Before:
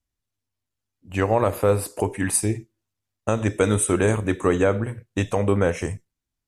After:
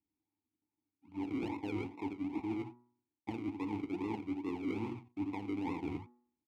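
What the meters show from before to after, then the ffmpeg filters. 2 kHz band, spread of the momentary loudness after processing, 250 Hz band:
-19.5 dB, 7 LU, -11.0 dB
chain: -filter_complex "[0:a]asplit=2[s0][s1];[s1]adelay=87.46,volume=0.398,highshelf=f=4000:g=-1.97[s2];[s0][s2]amix=inputs=2:normalize=0,acrusher=samples=40:mix=1:aa=0.000001:lfo=1:lforange=24:lforate=2.4,asplit=3[s3][s4][s5];[s3]bandpass=f=300:t=q:w=8,volume=1[s6];[s4]bandpass=f=870:t=q:w=8,volume=0.501[s7];[s5]bandpass=f=2240:t=q:w=8,volume=0.355[s8];[s6][s7][s8]amix=inputs=3:normalize=0,bandreject=f=121.1:t=h:w=4,bandreject=f=242.2:t=h:w=4,bandreject=f=363.3:t=h:w=4,bandreject=f=484.4:t=h:w=4,bandreject=f=605.5:t=h:w=4,bandreject=f=726.6:t=h:w=4,bandreject=f=847.7:t=h:w=4,bandreject=f=968.8:t=h:w=4,bandreject=f=1089.9:t=h:w=4,bandreject=f=1211:t=h:w=4,bandreject=f=1332.1:t=h:w=4,bandreject=f=1453.2:t=h:w=4,bandreject=f=1574.3:t=h:w=4,bandreject=f=1695.4:t=h:w=4,bandreject=f=1816.5:t=h:w=4,bandreject=f=1937.6:t=h:w=4,areverse,acompressor=threshold=0.00631:ratio=6,areverse,equalizer=f=84:t=o:w=1.6:g=6.5,volume=2.24"

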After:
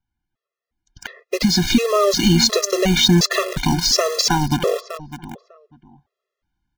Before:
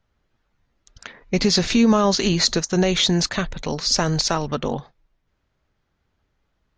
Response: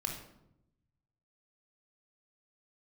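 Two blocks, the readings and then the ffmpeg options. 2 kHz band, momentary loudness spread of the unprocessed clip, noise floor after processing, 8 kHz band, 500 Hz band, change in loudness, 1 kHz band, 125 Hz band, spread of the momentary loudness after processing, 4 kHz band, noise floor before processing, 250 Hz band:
+3.5 dB, 10 LU, -85 dBFS, +4.0 dB, +3.5 dB, +3.0 dB, +3.0 dB, +4.0 dB, 14 LU, +3.5 dB, -72 dBFS, +1.5 dB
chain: -filter_complex "[0:a]agate=range=0.224:threshold=0.00398:ratio=16:detection=peak,asplit=2[s0][s1];[s1]adelay=599,lowpass=f=1700:p=1,volume=0.158,asplit=2[s2][s3];[s3]adelay=599,lowpass=f=1700:p=1,volume=0.22[s4];[s2][s4]amix=inputs=2:normalize=0[s5];[s0][s5]amix=inputs=2:normalize=0,acompressor=threshold=0.0501:ratio=2,asplit=2[s6][s7];[s7]acrusher=bits=4:mix=0:aa=0.000001,volume=0.668[s8];[s6][s8]amix=inputs=2:normalize=0,dynaudnorm=f=360:g=9:m=2.24,afftfilt=real='re*gt(sin(2*PI*1.4*pts/sr)*(1-2*mod(floor(b*sr/1024/350),2)),0)':imag='im*gt(sin(2*PI*1.4*pts/sr)*(1-2*mod(floor(b*sr/1024/350),2)),0)':win_size=1024:overlap=0.75,volume=1.5"

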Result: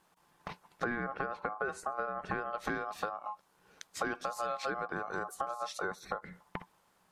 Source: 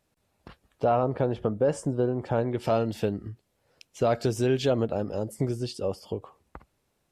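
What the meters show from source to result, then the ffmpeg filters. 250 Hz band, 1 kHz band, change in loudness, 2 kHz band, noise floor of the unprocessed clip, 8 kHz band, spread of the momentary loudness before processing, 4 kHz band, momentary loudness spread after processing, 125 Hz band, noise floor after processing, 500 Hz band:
-14.0 dB, -3.0 dB, -10.0 dB, +5.0 dB, -74 dBFS, -5.0 dB, 8 LU, -8.0 dB, 11 LU, -20.0 dB, -71 dBFS, -14.0 dB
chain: -af "aeval=exprs='val(0)*sin(2*PI*950*n/s)':c=same,acompressor=threshold=0.01:ratio=6,equalizer=f=180:t=o:w=0.32:g=12,volume=2.11"

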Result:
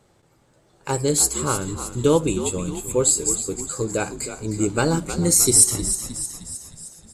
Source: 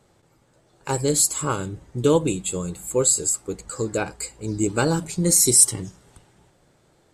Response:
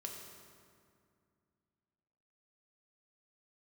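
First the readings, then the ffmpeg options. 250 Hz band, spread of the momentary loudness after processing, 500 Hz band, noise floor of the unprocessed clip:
+1.0 dB, 15 LU, +1.0 dB, -61 dBFS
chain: -filter_complex "[0:a]asplit=7[s0][s1][s2][s3][s4][s5][s6];[s1]adelay=310,afreqshift=-67,volume=0.299[s7];[s2]adelay=620,afreqshift=-134,volume=0.168[s8];[s3]adelay=930,afreqshift=-201,volume=0.0933[s9];[s4]adelay=1240,afreqshift=-268,volume=0.0525[s10];[s5]adelay=1550,afreqshift=-335,volume=0.0295[s11];[s6]adelay=1860,afreqshift=-402,volume=0.0164[s12];[s0][s7][s8][s9][s10][s11][s12]amix=inputs=7:normalize=0,asplit=2[s13][s14];[1:a]atrim=start_sample=2205[s15];[s14][s15]afir=irnorm=-1:irlink=0,volume=0.119[s16];[s13][s16]amix=inputs=2:normalize=0"

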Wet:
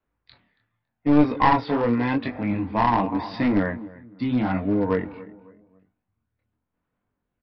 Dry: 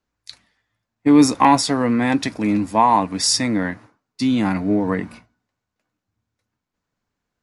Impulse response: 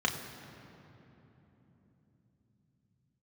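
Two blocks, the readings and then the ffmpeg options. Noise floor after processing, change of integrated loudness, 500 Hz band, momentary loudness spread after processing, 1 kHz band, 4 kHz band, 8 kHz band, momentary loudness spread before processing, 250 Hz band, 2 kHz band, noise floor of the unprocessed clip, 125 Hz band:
-81 dBFS, -5.0 dB, -2.0 dB, 11 LU, -5.0 dB, -15.5 dB, under -40 dB, 10 LU, -4.5 dB, -3.0 dB, -82 dBFS, -1.0 dB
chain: -filter_complex "[0:a]asplit=2[s0][s1];[s1]adelay=278,lowpass=f=1600:p=1,volume=0.141,asplit=2[s2][s3];[s3]adelay=278,lowpass=f=1600:p=1,volume=0.36,asplit=2[s4][s5];[s5]adelay=278,lowpass=f=1600:p=1,volume=0.36[s6];[s0][s2][s4][s6]amix=inputs=4:normalize=0,aphaser=in_gain=1:out_gain=1:delay=2.2:decay=0.32:speed=0.29:type=sinusoidal,adynamicequalizer=threshold=0.0282:dfrequency=190:dqfactor=2.9:tfrequency=190:tqfactor=2.9:attack=5:release=100:ratio=0.375:range=2:mode=cutabove:tftype=bell,flanger=delay=20:depth=5.8:speed=0.84,lowpass=f=3600:w=0.5412,lowpass=f=3600:w=1.3066,aemphasis=mode=reproduction:type=75fm,aresample=11025,aeval=exprs='clip(val(0),-1,0.119)':c=same,aresample=44100"

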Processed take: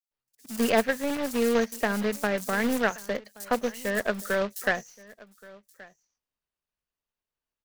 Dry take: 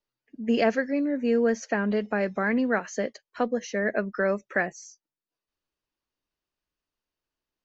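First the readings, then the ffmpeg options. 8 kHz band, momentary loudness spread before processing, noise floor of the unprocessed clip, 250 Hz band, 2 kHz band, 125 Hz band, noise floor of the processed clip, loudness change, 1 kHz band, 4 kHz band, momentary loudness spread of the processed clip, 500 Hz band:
no reading, 9 LU, under -85 dBFS, -2.5 dB, +0.5 dB, -2.0 dB, under -85 dBFS, -0.5 dB, +1.0 dB, +5.5 dB, 7 LU, -1.0 dB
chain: -filter_complex "[0:a]aeval=exprs='0.282*(cos(1*acos(clip(val(0)/0.282,-1,1)))-cos(1*PI/2))+0.0112*(cos(6*acos(clip(val(0)/0.282,-1,1)))-cos(6*PI/2))+0.0126*(cos(7*acos(clip(val(0)/0.282,-1,1)))-cos(7*PI/2))':c=same,asplit=2[s0][s1];[s1]aecho=0:1:1125:0.0794[s2];[s0][s2]amix=inputs=2:normalize=0,acrusher=bits=2:mode=log:mix=0:aa=0.000001,equalizer=f=320:w=3.6:g=-7.5,acrossover=split=5100[s3][s4];[s3]adelay=110[s5];[s5][s4]amix=inputs=2:normalize=0"

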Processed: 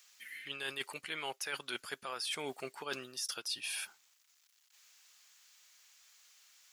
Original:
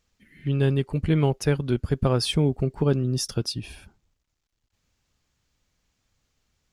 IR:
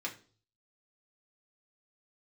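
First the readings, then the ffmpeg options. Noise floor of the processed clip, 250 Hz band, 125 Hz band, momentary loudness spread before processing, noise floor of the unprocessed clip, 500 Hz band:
-71 dBFS, -26.5 dB, -38.0 dB, 8 LU, -78 dBFS, -19.0 dB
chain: -filter_complex "[0:a]highpass=1400,acrossover=split=2900[s0][s1];[s1]acompressor=threshold=0.02:ratio=4:attack=1:release=60[s2];[s0][s2]amix=inputs=2:normalize=0,highshelf=f=7100:g=8.5,alimiter=level_in=1.33:limit=0.0631:level=0:latency=1:release=14,volume=0.75,areverse,acompressor=threshold=0.00398:ratio=6,areverse,volume=3.55"

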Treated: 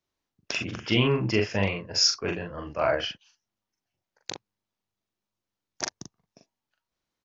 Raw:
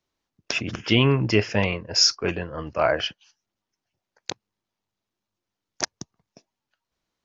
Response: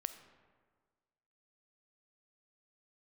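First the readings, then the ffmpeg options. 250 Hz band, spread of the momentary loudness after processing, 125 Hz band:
-4.0 dB, 18 LU, -4.5 dB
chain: -filter_complex "[0:a]asplit=2[s0][s1];[s1]adelay=41,volume=0.631[s2];[s0][s2]amix=inputs=2:normalize=0,volume=0.562"

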